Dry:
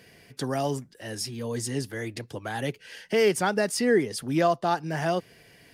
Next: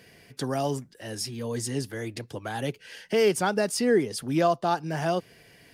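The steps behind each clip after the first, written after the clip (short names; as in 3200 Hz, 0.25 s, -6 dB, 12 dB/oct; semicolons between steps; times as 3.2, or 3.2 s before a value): dynamic EQ 1900 Hz, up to -5 dB, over -46 dBFS, Q 3.8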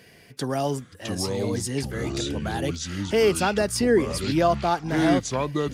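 echoes that change speed 0.498 s, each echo -6 st, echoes 2; gain +2 dB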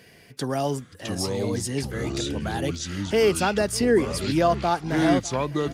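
echo 0.602 s -20.5 dB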